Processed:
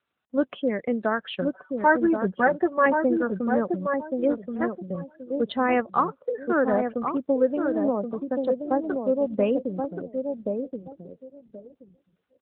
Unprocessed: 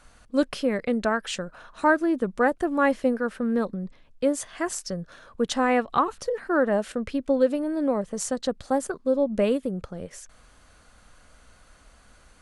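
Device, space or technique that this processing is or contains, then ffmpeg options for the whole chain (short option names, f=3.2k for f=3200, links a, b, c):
mobile call with aggressive noise cancelling: -filter_complex "[0:a]asettb=1/sr,asplit=3[a][b][c];[a]atrim=end=1.374[d];[b]atrim=start=1.37:end=2.86,asetpts=PTS-STARTPTS,afade=t=in:d=0.004:c=qsin,afade=t=out:st=1.486:d=0.004:c=qsin,aecho=1:1:5.3:0.76,atrim=end_sample=65709[e];[c]atrim=start=2.856[f];[d][e]acrossfade=d=0.004:c1=hsin:c2=qsin[g];[g][f]acrossfade=d=0.004:c1=qsin:c2=hsin,highpass=140,asplit=2[h][i];[i]adelay=1077,lowpass=f=1.1k:p=1,volume=-4dB,asplit=2[j][k];[k]adelay=1077,lowpass=f=1.1k:p=1,volume=0.25,asplit=2[l][m];[m]adelay=1077,lowpass=f=1.1k:p=1,volume=0.25[n];[h][j][l][n]amix=inputs=4:normalize=0,afftdn=nr=29:nf=-35" -ar 8000 -c:a libopencore_amrnb -b:a 12200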